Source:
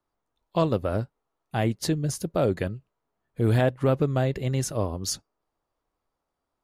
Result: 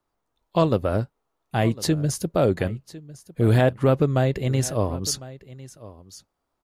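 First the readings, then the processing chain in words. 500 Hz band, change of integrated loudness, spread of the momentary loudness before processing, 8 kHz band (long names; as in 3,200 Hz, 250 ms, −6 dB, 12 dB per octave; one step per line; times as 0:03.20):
+3.5 dB, +3.5 dB, 11 LU, +3.5 dB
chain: single-tap delay 1,053 ms −18.5 dB
level +3.5 dB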